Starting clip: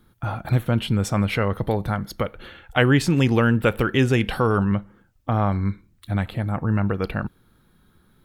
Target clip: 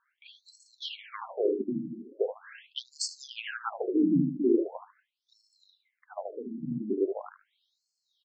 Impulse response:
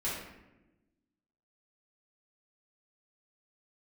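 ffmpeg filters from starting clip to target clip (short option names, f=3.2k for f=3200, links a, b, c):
-filter_complex "[0:a]equalizer=f=1.3k:t=o:w=0.56:g=-9.5,asplit=2[a][b];[b]adelay=74,lowpass=f=1.7k:p=1,volume=-4dB,asplit=2[c][d];[d]adelay=74,lowpass=f=1.7k:p=1,volume=0.37,asplit=2[e][f];[f]adelay=74,lowpass=f=1.7k:p=1,volume=0.37,asplit=2[g][h];[h]adelay=74,lowpass=f=1.7k:p=1,volume=0.37,asplit=2[i][j];[j]adelay=74,lowpass=f=1.7k:p=1,volume=0.37[k];[a][c][e][g][i][k]amix=inputs=6:normalize=0,afreqshift=-84,aeval=exprs='0.596*(cos(1*acos(clip(val(0)/0.596,-1,1)))-cos(1*PI/2))+0.0531*(cos(2*acos(clip(val(0)/0.596,-1,1)))-cos(2*PI/2))+0.0168*(cos(6*acos(clip(val(0)/0.596,-1,1)))-cos(6*PI/2))':c=same,afftfilt=real='re*between(b*sr/1024,230*pow(6000/230,0.5+0.5*sin(2*PI*0.41*pts/sr))/1.41,230*pow(6000/230,0.5+0.5*sin(2*PI*0.41*pts/sr))*1.41)':imag='im*between(b*sr/1024,230*pow(6000/230,0.5+0.5*sin(2*PI*0.41*pts/sr))/1.41,230*pow(6000/230,0.5+0.5*sin(2*PI*0.41*pts/sr))*1.41)':win_size=1024:overlap=0.75"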